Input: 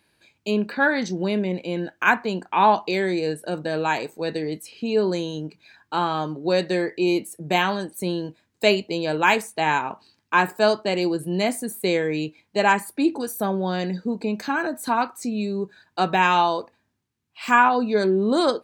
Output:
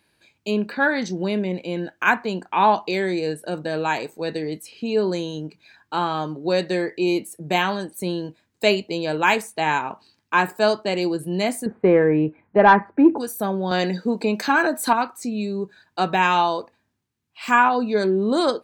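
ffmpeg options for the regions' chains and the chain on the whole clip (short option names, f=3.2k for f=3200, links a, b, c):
-filter_complex "[0:a]asettb=1/sr,asplit=3[a][b][c];[a]atrim=end=11.664[d];[b]atrim=start=11.66:end=13.18,asetpts=PTS-STARTPTS,afade=t=in:d=0.004:c=qsin,afade=t=out:st=1.516:d=0.004:c=qsin,lowpass=f=1.7k:w=0.5412,lowpass=f=1.7k:w=1.3066,acontrast=88[e];[c]atrim=start=13.176[f];[d][e]acrossfade=d=0.004:c1=hsin:c2=qsin[g];[g][f]acrossfade=d=0.004:c1=qsin:c2=hsin,asettb=1/sr,asplit=3[h][i][j];[h]atrim=end=13.714[k];[i]atrim=start=13.71:end=14.93,asetpts=PTS-STARTPTS,afade=t=in:d=0.004:c=qsin,afade=t=out:st=1.216:d=0.004:c=qsin,highpass=f=310:p=1,bandreject=f=6.7k:w=27,acontrast=85[l];[j]atrim=start=14.926[m];[k][l]acrossfade=d=0.004:c1=hsin:c2=qsin[n];[n][m]acrossfade=d=0.004:c1=qsin:c2=hsin"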